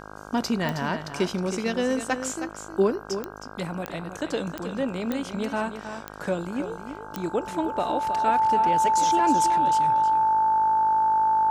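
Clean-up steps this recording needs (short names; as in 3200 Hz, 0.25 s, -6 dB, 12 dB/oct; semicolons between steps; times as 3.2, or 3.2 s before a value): de-click; de-hum 51.8 Hz, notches 31; notch 880 Hz, Q 30; inverse comb 0.317 s -9.5 dB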